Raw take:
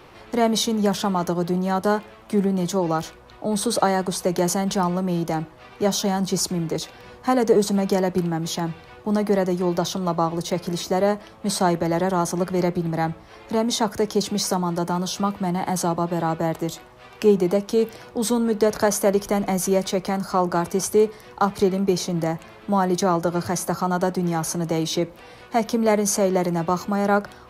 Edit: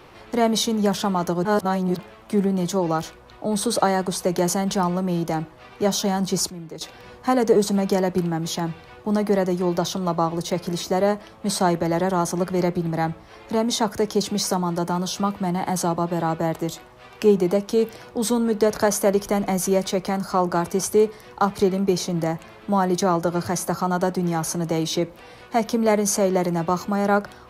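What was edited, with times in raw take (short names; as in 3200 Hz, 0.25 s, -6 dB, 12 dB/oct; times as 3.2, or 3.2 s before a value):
1.45–1.99 reverse
6.5–6.81 gain -11 dB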